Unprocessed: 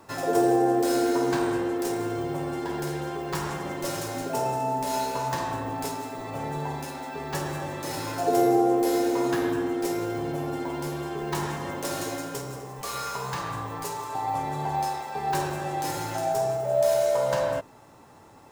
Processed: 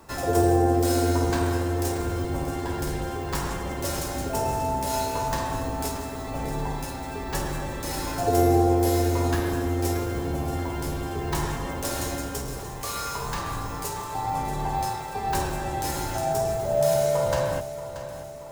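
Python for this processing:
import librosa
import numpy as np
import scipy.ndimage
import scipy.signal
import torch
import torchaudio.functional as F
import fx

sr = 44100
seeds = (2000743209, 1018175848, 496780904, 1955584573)

y = fx.octave_divider(x, sr, octaves=2, level_db=2.0)
y = fx.high_shelf(y, sr, hz=5800.0, db=5.0)
y = fx.echo_feedback(y, sr, ms=631, feedback_pct=53, wet_db=-12.5)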